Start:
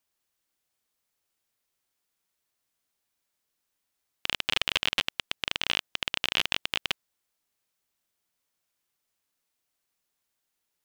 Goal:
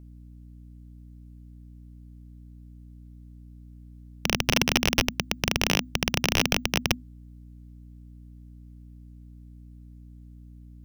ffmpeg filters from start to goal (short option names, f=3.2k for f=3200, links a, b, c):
-af "aeval=exprs='0.447*(cos(1*acos(clip(val(0)/0.447,-1,1)))-cos(1*PI/2))+0.2*(cos(2*acos(clip(val(0)/0.447,-1,1)))-cos(2*PI/2))+0.141*(cos(6*acos(clip(val(0)/0.447,-1,1)))-cos(6*PI/2))':c=same,afreqshift=-250,aeval=exprs='val(0)+0.00562*(sin(2*PI*60*n/s)+sin(2*PI*2*60*n/s)/2+sin(2*PI*3*60*n/s)/3+sin(2*PI*4*60*n/s)/4+sin(2*PI*5*60*n/s)/5)':c=same"